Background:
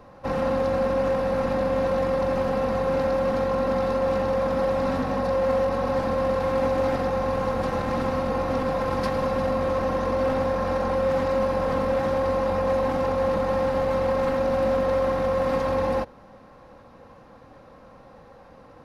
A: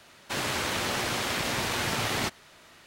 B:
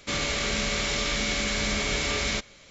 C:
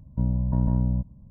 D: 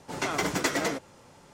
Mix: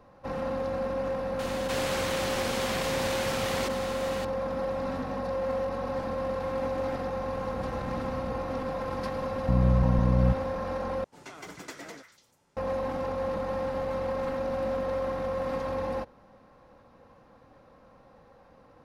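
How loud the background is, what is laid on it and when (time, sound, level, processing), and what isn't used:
background -7.5 dB
1.39 s: add A -5 dB + level flattener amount 70%
7.35 s: add C -11.5 dB + compression, threshold -25 dBFS
9.31 s: add C -13.5 dB + loudness maximiser +16.5 dB
11.04 s: replace with D -15.5 dB + repeats whose band climbs or falls 146 ms, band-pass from 1.7 kHz, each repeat 1.4 oct, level -6 dB
not used: B

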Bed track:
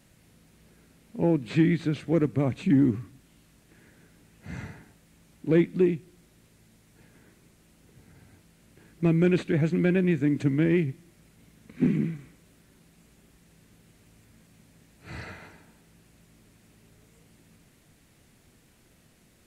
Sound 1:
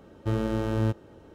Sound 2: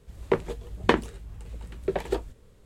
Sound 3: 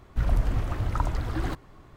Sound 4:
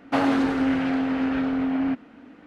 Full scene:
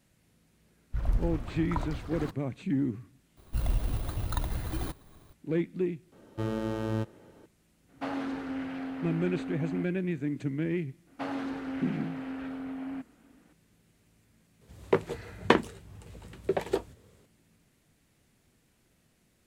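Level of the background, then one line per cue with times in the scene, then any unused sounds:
bed track -8 dB
0.76 s: add 3 -7.5 dB + three bands expanded up and down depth 100%
3.37 s: add 3 -5 dB + bit-reversed sample order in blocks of 16 samples
6.12 s: add 1 -3.5 dB + peaking EQ 64 Hz -14 dB 0.85 oct
7.89 s: add 4 -13 dB
11.07 s: add 4 -13.5 dB
14.61 s: add 2 -1 dB + high-pass 78 Hz 24 dB/octave

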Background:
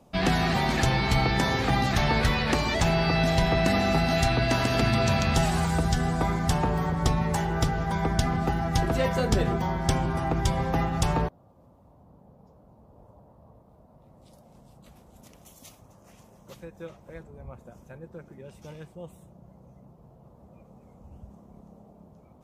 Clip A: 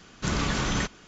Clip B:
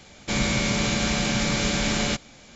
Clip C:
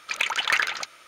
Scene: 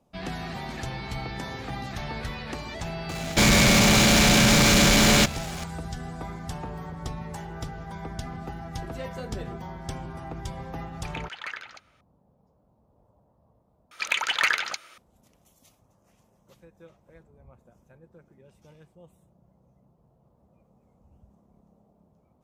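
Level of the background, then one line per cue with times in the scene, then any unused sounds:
background -10.5 dB
3.09 s: add B -4 dB + waveshaping leveller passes 5
10.94 s: add C -12.5 dB + low-pass 3 kHz 6 dB/octave
13.91 s: replace with C -0.5 dB
not used: A

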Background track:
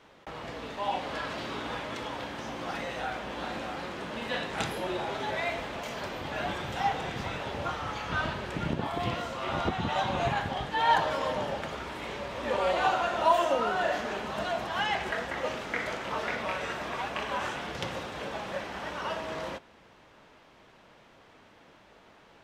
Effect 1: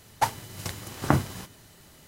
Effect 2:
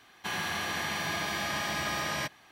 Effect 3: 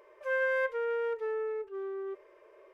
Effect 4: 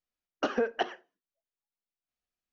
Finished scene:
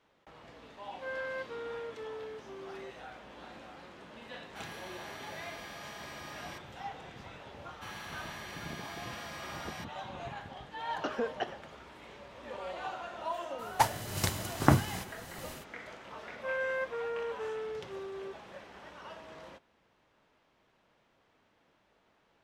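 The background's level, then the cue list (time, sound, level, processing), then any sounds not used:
background track -13.5 dB
0.76 s: add 3 -9 dB + tape noise reduction on one side only decoder only
4.31 s: add 2 -14.5 dB
7.57 s: add 2 -12.5 dB
10.61 s: add 4 -5.5 dB
13.58 s: add 1 -2.5 dB, fades 0.02 s + level rider
16.18 s: add 3 -4.5 dB

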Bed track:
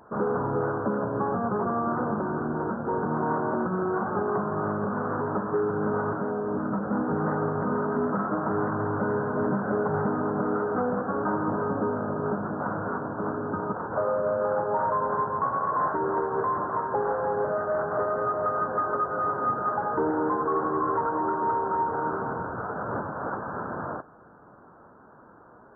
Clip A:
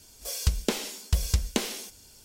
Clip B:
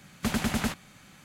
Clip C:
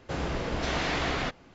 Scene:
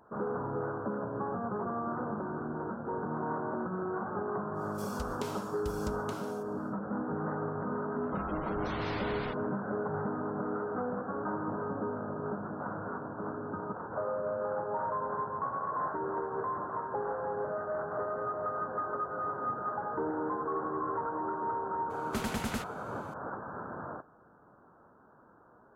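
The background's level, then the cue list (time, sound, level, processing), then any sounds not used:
bed track -8 dB
4.53 s: add A -14 dB, fades 0.10 s + random-step tremolo
8.03 s: add C -10 dB + spectral gate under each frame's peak -20 dB strong
21.90 s: add B -7 dB

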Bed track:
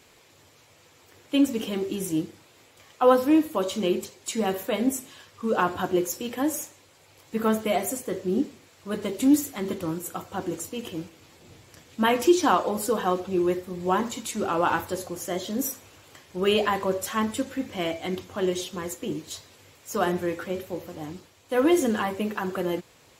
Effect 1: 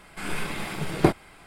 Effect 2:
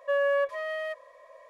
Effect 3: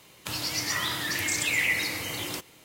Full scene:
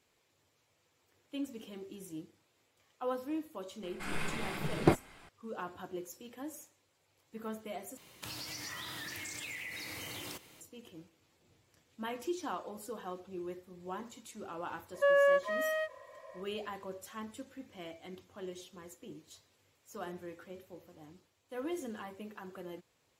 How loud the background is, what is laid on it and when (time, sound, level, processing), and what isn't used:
bed track -18 dB
3.83 s: add 1 -6 dB + treble shelf 7.8 kHz -5 dB
7.97 s: replace with 3 -4 dB + compression 12:1, threshold -35 dBFS
14.94 s: add 2 -0.5 dB + endings held to a fixed fall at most 330 dB/s

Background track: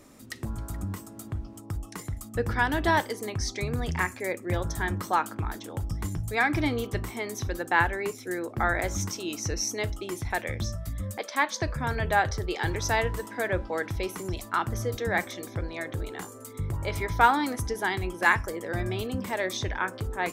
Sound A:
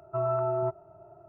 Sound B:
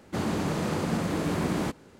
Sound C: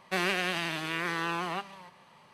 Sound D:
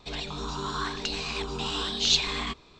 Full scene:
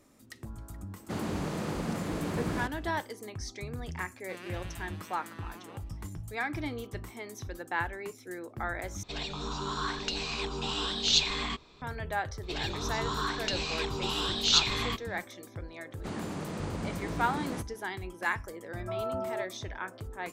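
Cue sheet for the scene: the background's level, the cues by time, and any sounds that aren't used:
background track -9 dB
0.96 s: add B -5.5 dB
4.17 s: add C -18 dB
9.03 s: replace with D -2 dB
12.43 s: add D -1 dB
15.91 s: add B -8.5 dB + resampled via 22.05 kHz
18.74 s: add A -6 dB + high-pass 280 Hz

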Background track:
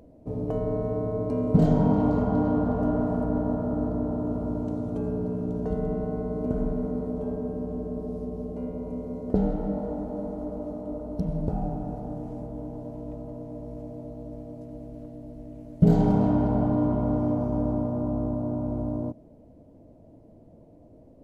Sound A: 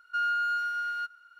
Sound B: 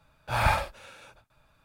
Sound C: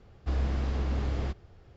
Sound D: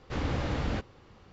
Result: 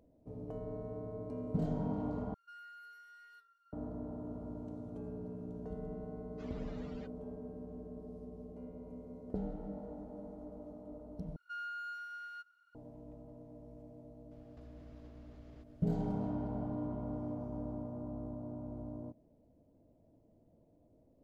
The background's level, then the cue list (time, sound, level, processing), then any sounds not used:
background track -15 dB
2.34 s: replace with A -3 dB + inharmonic resonator 140 Hz, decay 0.57 s, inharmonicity 0.008
6.27 s: add D -14 dB + expander on every frequency bin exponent 3
11.36 s: replace with A -14.5 dB
14.31 s: add C -10 dB + compression 16:1, threshold -42 dBFS
not used: B

